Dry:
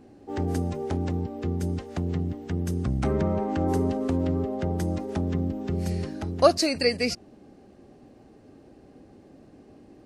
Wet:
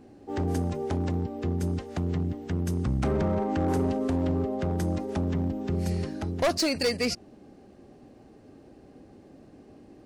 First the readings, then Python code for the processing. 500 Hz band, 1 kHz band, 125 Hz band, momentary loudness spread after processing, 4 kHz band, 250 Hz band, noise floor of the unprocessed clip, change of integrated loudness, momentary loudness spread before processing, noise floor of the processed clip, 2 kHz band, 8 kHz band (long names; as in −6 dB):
−3.0 dB, −2.5 dB, −0.5 dB, 5 LU, −1.5 dB, −1.0 dB, −53 dBFS, −1.5 dB, 8 LU, −53 dBFS, −1.0 dB, −0.5 dB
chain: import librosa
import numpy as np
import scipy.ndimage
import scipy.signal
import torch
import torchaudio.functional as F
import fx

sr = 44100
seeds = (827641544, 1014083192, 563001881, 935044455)

y = np.clip(x, -10.0 ** (-20.5 / 20.0), 10.0 ** (-20.5 / 20.0))